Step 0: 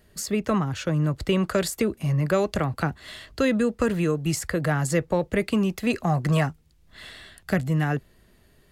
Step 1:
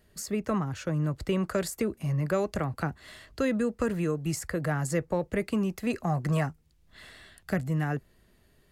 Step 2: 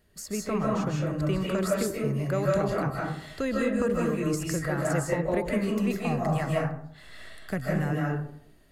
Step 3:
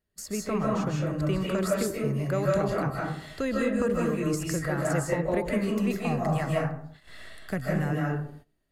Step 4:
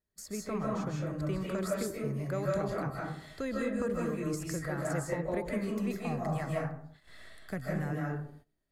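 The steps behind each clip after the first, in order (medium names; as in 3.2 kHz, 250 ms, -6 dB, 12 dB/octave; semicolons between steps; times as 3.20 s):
dynamic bell 3.4 kHz, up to -6 dB, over -49 dBFS, Q 1.7; trim -5 dB
algorithmic reverb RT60 0.66 s, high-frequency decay 0.45×, pre-delay 115 ms, DRR -4 dB; trim -2.5 dB
gate -47 dBFS, range -17 dB
band-stop 2.8 kHz, Q 10; trim -6.5 dB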